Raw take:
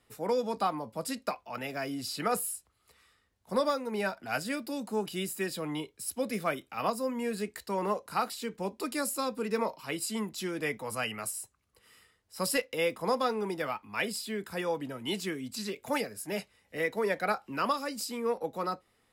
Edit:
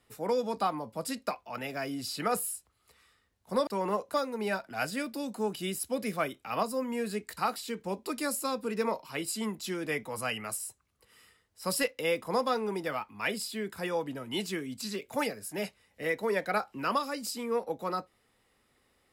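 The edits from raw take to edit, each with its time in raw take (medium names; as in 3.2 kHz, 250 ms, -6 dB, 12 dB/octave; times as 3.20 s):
5.32–6.06 s: delete
7.64–8.11 s: move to 3.67 s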